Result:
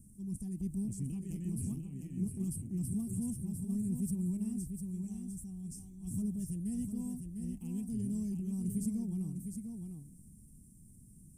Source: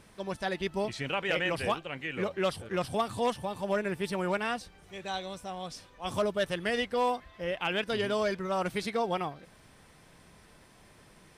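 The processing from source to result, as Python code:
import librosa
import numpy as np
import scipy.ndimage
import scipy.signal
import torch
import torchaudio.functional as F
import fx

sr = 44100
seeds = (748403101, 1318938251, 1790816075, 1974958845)

p1 = scipy.signal.sosfilt(scipy.signal.ellip(3, 1.0, 40, [230.0, 8400.0], 'bandstop', fs=sr, output='sos'), x)
p2 = fx.transient(p1, sr, attack_db=-1, sustain_db=4)
p3 = p2 + fx.echo_single(p2, sr, ms=702, db=-6.0, dry=0)
y = p3 * librosa.db_to_amplitude(3.0)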